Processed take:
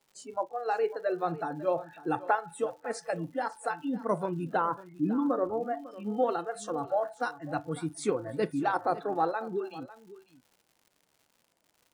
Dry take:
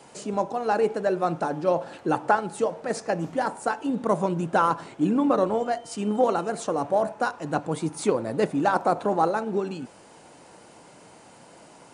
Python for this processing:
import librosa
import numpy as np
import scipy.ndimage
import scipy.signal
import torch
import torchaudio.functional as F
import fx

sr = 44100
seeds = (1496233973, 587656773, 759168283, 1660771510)

p1 = fx.lowpass(x, sr, hz=1500.0, slope=6, at=(4.57, 6.17))
p2 = fx.noise_reduce_blind(p1, sr, reduce_db=23)
p3 = fx.dmg_crackle(p2, sr, seeds[0], per_s=170.0, level_db=-45.0)
p4 = p3 + fx.echo_single(p3, sr, ms=550, db=-17.0, dry=0)
y = F.gain(torch.from_numpy(p4), -5.5).numpy()